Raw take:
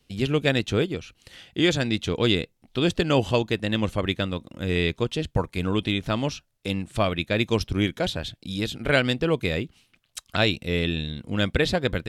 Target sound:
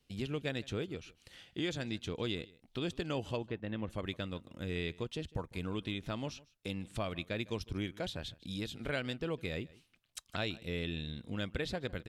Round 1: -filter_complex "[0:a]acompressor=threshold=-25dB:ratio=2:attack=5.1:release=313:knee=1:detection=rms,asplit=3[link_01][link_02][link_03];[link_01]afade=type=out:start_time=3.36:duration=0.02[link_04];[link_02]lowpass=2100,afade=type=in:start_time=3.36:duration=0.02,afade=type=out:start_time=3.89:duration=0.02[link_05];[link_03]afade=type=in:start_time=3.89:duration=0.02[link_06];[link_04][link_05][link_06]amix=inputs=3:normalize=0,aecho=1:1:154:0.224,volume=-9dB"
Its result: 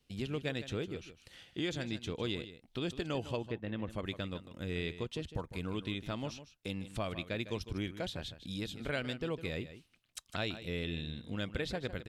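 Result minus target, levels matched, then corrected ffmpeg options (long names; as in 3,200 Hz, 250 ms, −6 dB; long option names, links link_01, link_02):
echo-to-direct +9 dB
-filter_complex "[0:a]acompressor=threshold=-25dB:ratio=2:attack=5.1:release=313:knee=1:detection=rms,asplit=3[link_01][link_02][link_03];[link_01]afade=type=out:start_time=3.36:duration=0.02[link_04];[link_02]lowpass=2100,afade=type=in:start_time=3.36:duration=0.02,afade=type=out:start_time=3.89:duration=0.02[link_05];[link_03]afade=type=in:start_time=3.89:duration=0.02[link_06];[link_04][link_05][link_06]amix=inputs=3:normalize=0,aecho=1:1:154:0.0794,volume=-9dB"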